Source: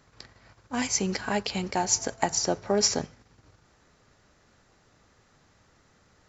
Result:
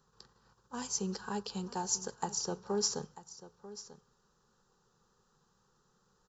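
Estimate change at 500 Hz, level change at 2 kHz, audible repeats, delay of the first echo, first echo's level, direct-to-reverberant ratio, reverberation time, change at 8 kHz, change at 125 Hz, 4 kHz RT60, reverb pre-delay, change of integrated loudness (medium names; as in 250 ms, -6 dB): -9.5 dB, -15.5 dB, 1, 941 ms, -15.5 dB, no reverb, no reverb, no reading, -7.5 dB, no reverb, no reverb, -9.0 dB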